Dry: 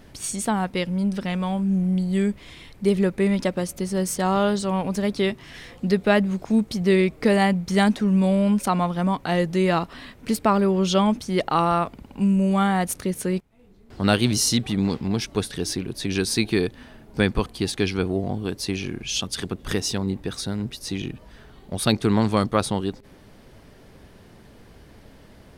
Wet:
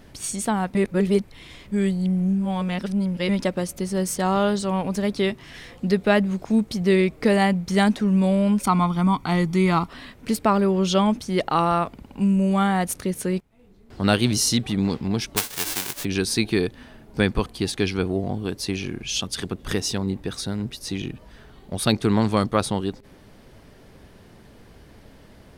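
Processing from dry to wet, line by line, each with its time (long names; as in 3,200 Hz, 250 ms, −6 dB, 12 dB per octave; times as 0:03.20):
0:00.75–0:03.29: reverse
0:08.64–0:09.88: comb filter 0.9 ms
0:15.36–0:16.03: spectral envelope flattened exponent 0.1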